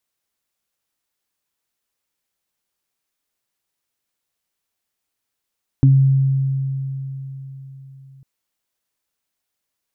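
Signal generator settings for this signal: additive tone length 2.40 s, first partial 135 Hz, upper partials -5.5 dB, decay 4.11 s, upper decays 0.25 s, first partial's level -7.5 dB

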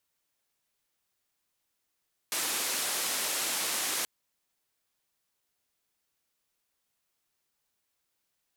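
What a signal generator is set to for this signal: noise band 270–12000 Hz, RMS -31.5 dBFS 1.73 s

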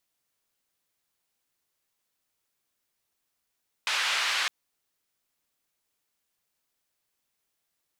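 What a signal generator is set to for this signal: noise band 1.3–3.1 kHz, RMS -27.5 dBFS 0.61 s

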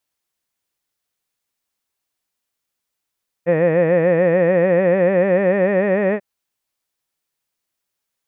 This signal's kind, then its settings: formant-synthesis vowel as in head, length 2.74 s, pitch 164 Hz, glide +3.5 st, vibrato 6.8 Hz, vibrato depth 1.15 st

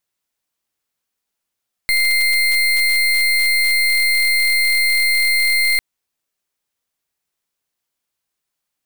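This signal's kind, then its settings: pulse 2.1 kHz, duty 29% -15.5 dBFS 3.90 s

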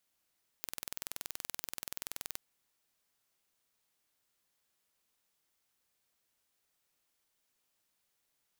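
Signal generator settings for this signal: pulse train 21 per s, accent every 0, -11.5 dBFS 1.76 s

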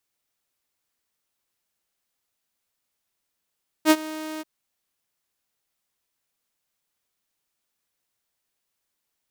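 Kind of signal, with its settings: ADSR saw 312 Hz, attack 56 ms, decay 50 ms, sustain -20 dB, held 0.56 s, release 26 ms -8.5 dBFS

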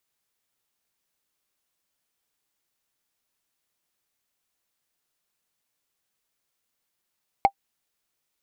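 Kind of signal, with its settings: wood hit, lowest mode 791 Hz, decay 0.07 s, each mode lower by 11 dB, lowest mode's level -7 dB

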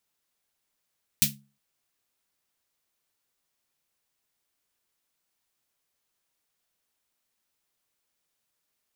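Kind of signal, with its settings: snare drum length 0.36 s, tones 140 Hz, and 210 Hz, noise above 2.3 kHz, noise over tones 12 dB, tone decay 0.37 s, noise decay 0.18 s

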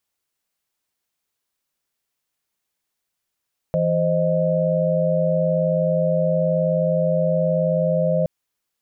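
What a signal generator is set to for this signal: chord E3/C5/D#5 sine, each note -21 dBFS 4.52 s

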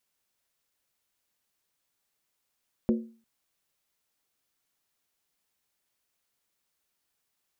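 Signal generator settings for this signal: skin hit length 0.35 s, lowest mode 227 Hz, decay 0.40 s, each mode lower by 6 dB, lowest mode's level -18.5 dB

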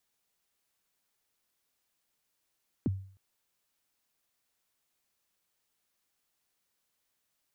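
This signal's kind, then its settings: kick drum length 0.31 s, from 350 Hz, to 96 Hz, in 26 ms, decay 0.49 s, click off, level -23 dB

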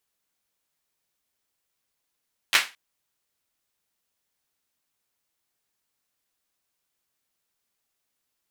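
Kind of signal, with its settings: hand clap length 0.22 s, bursts 3, apart 10 ms, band 2.1 kHz, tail 0.27 s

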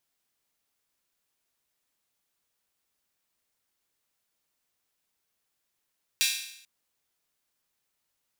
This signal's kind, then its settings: open hi-hat length 0.44 s, high-pass 2.8 kHz, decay 0.74 s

